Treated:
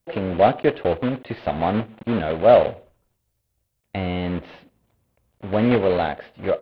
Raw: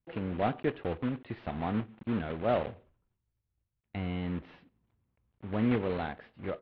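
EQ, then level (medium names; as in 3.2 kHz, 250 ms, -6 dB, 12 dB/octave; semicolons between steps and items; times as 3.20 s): peaking EQ 590 Hz +9.5 dB 0.89 oct; treble shelf 3.3 kHz +10.5 dB; +7.5 dB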